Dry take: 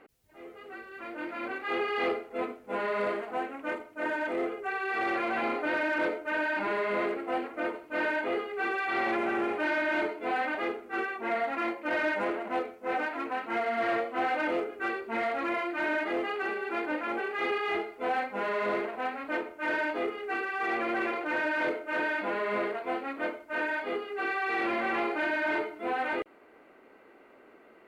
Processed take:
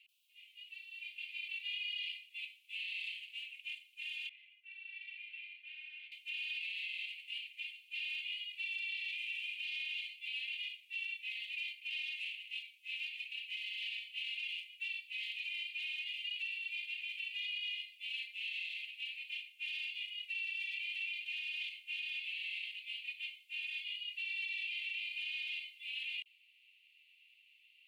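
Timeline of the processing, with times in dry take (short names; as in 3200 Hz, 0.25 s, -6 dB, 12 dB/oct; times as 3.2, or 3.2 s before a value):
4.29–6.12 LPF 1300 Hz
whole clip: steep high-pass 2600 Hz 72 dB/oct; resonant high shelf 4000 Hz -11 dB, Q 1.5; limiter -41 dBFS; gain +8.5 dB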